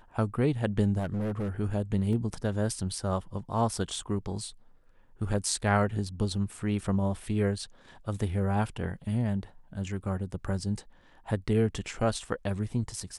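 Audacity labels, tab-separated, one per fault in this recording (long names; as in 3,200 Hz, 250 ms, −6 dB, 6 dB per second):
0.980000	1.490000	clipping −27 dBFS
2.130000	2.130000	drop-out 2.1 ms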